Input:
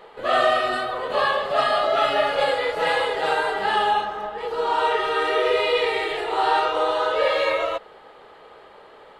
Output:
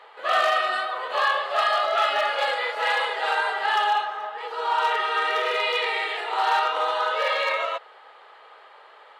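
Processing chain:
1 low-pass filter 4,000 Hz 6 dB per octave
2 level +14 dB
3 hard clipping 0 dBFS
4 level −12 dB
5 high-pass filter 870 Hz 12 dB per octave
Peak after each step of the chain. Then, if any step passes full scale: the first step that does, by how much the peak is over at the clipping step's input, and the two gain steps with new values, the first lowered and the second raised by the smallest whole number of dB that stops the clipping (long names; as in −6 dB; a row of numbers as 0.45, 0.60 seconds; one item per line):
−7.0, +7.0, 0.0, −12.0, −10.5 dBFS
step 2, 7.0 dB
step 2 +7 dB, step 4 −5 dB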